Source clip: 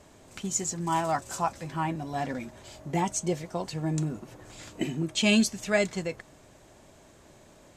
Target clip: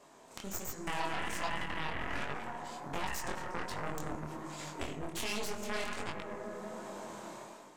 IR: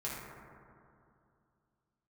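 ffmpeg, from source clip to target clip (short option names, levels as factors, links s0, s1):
-filter_complex "[0:a]highpass=230,asplit=2[s0][s1];[s1]equalizer=f=1000:t=o:w=1.1:g=14.5[s2];[1:a]atrim=start_sample=2205[s3];[s2][s3]afir=irnorm=-1:irlink=0,volume=0.376[s4];[s0][s4]amix=inputs=2:normalize=0,aeval=exprs='0.398*(cos(1*acos(clip(val(0)/0.398,-1,1)))-cos(1*PI/2))+0.0631*(cos(6*acos(clip(val(0)/0.398,-1,1)))-cos(6*PI/2))+0.0794*(cos(7*acos(clip(val(0)/0.398,-1,1)))-cos(7*PI/2))':c=same,dynaudnorm=f=170:g=7:m=5.62,alimiter=limit=0.251:level=0:latency=1:release=24,acompressor=threshold=0.00562:ratio=2,flanger=delay=20:depth=6.7:speed=1.3,volume=1.78"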